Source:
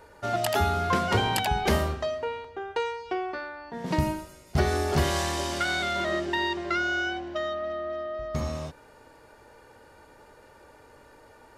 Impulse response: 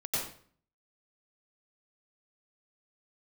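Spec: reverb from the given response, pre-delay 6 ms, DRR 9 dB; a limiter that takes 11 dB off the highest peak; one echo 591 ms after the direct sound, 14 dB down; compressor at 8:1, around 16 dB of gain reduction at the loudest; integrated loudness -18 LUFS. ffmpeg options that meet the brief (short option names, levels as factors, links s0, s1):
-filter_complex "[0:a]acompressor=threshold=0.0158:ratio=8,alimiter=level_in=2.51:limit=0.0631:level=0:latency=1,volume=0.398,aecho=1:1:591:0.2,asplit=2[s0][s1];[1:a]atrim=start_sample=2205,adelay=6[s2];[s1][s2]afir=irnorm=-1:irlink=0,volume=0.188[s3];[s0][s3]amix=inputs=2:normalize=0,volume=13.3"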